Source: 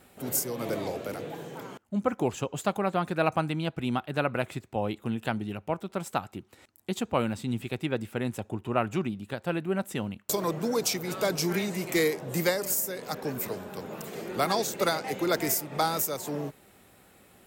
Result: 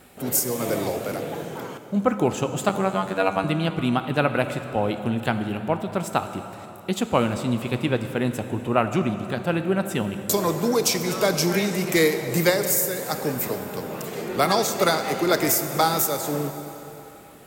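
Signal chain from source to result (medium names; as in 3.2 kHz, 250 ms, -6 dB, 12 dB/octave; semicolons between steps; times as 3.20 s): 2.69–3.44 s: robot voice 95.6 Hz; plate-style reverb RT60 3.6 s, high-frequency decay 0.75×, DRR 8 dB; trim +6 dB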